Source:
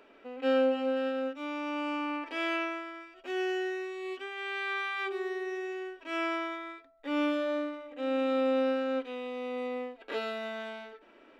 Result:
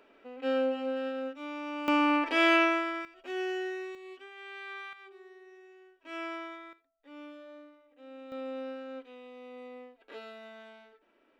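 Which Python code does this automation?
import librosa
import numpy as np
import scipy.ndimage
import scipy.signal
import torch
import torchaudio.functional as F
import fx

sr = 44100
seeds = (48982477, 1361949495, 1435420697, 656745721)

y = fx.gain(x, sr, db=fx.steps((0.0, -3.0), (1.88, 8.5), (3.05, -2.0), (3.95, -9.0), (4.93, -18.0), (6.04, -6.5), (6.73, -18.0), (8.32, -11.0)))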